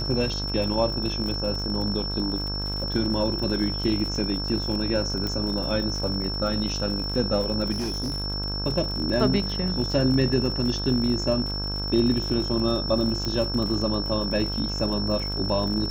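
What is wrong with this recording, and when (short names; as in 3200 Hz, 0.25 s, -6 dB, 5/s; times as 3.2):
buzz 50 Hz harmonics 33 -31 dBFS
crackle 89/s -32 dBFS
tone 5400 Hz -30 dBFS
5.27 pop
7.71–8.24 clipped -24.5 dBFS
13.25 pop -16 dBFS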